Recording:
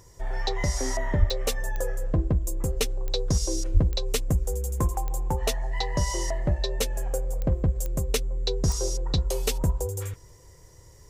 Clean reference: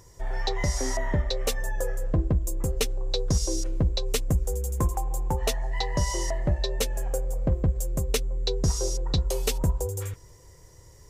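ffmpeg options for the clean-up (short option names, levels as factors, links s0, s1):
-filter_complex "[0:a]adeclick=t=4,asplit=3[s0][s1][s2];[s0]afade=t=out:st=1.19:d=0.02[s3];[s1]highpass=f=140:w=0.5412,highpass=f=140:w=1.3066,afade=t=in:st=1.19:d=0.02,afade=t=out:st=1.31:d=0.02[s4];[s2]afade=t=in:st=1.31:d=0.02[s5];[s3][s4][s5]amix=inputs=3:normalize=0,asplit=3[s6][s7][s8];[s6]afade=t=out:st=3.73:d=0.02[s9];[s7]highpass=f=140:w=0.5412,highpass=f=140:w=1.3066,afade=t=in:st=3.73:d=0.02,afade=t=out:st=3.85:d=0.02[s10];[s8]afade=t=in:st=3.85:d=0.02[s11];[s9][s10][s11]amix=inputs=3:normalize=0"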